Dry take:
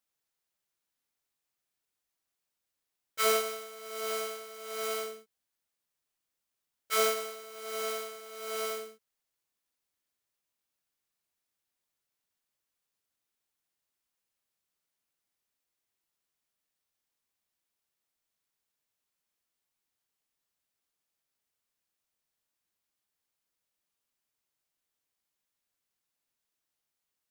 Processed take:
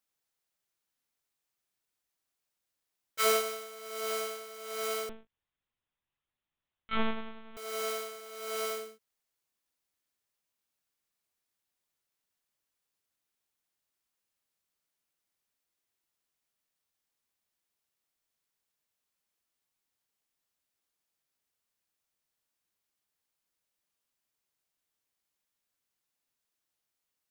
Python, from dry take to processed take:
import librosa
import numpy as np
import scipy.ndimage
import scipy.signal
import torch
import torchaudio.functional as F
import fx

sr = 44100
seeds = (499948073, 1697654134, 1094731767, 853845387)

y = fx.lpc_vocoder(x, sr, seeds[0], excitation='pitch_kept', order=8, at=(5.09, 7.57))